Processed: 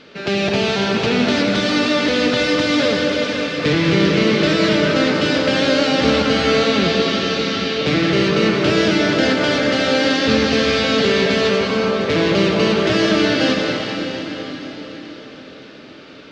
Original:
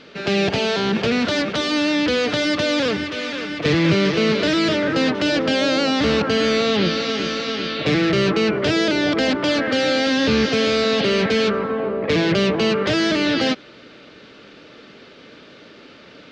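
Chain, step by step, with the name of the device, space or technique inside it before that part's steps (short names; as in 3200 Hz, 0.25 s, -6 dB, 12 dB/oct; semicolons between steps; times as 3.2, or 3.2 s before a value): cathedral (reverb RT60 4.9 s, pre-delay 66 ms, DRR 0 dB)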